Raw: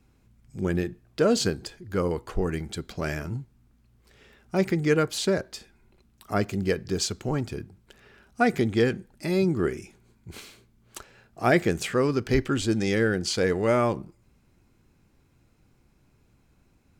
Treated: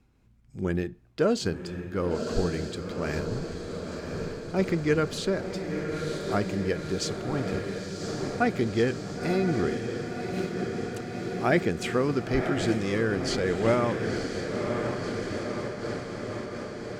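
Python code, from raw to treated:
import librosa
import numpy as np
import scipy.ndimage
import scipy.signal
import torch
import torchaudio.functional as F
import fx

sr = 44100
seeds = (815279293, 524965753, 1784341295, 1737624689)

y = fx.high_shelf(x, sr, hz=8000.0, db=-9.5)
y = fx.echo_diffused(y, sr, ms=1015, feedback_pct=73, wet_db=-6.0)
y = fx.am_noise(y, sr, seeds[0], hz=5.7, depth_pct=50)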